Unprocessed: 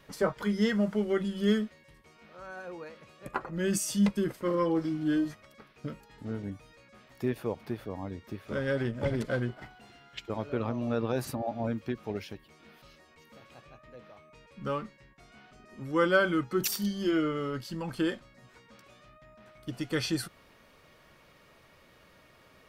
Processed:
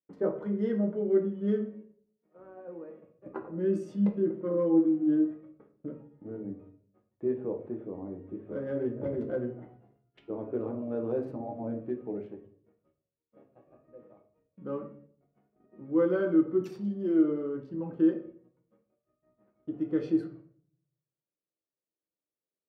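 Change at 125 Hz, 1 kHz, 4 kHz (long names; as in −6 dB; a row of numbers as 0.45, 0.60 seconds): −4.5 dB, −9.5 dB, below −20 dB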